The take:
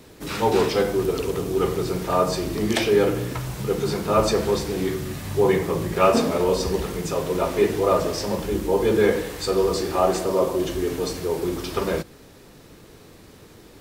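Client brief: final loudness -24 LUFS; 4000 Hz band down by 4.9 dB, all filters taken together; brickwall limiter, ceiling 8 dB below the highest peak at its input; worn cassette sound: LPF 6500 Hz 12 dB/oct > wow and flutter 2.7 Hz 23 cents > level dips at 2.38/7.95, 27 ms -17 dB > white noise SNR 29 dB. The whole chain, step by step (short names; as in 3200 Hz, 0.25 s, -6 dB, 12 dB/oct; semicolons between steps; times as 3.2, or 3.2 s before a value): bell 4000 Hz -5.5 dB; limiter -13 dBFS; LPF 6500 Hz 12 dB/oct; wow and flutter 2.7 Hz 23 cents; level dips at 2.38/7.95, 27 ms -17 dB; white noise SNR 29 dB; gain +0.5 dB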